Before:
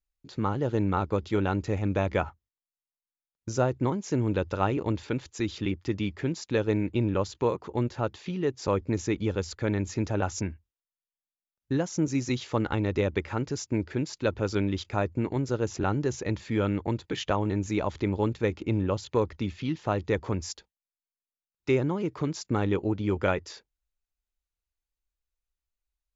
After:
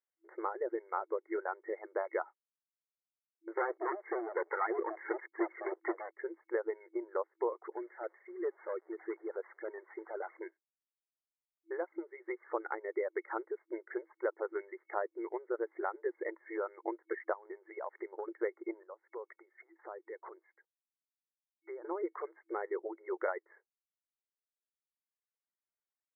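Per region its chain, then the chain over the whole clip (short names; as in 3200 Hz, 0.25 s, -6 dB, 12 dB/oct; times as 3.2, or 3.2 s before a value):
3.57–6.11 bell 620 Hz -13.5 dB 0.36 oct + sample leveller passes 5
7.72–10.37 delta modulation 32 kbps, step -41.5 dBFS + compressor 3:1, threshold -30 dBFS + three-band expander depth 100%
17.33–18.28 HPF 180 Hz + compressor 16:1, threshold -32 dBFS
18.83–21.85 compressor 16:1, threshold -38 dBFS + three-band expander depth 70%
whole clip: compressor, threshold -28 dBFS; FFT band-pass 330–2200 Hz; reverb removal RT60 1.6 s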